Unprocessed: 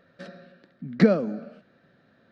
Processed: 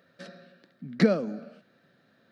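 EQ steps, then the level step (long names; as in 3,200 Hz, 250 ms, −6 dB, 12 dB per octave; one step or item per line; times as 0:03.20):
high-pass filter 100 Hz
high-shelf EQ 4,000 Hz +10 dB
−3.5 dB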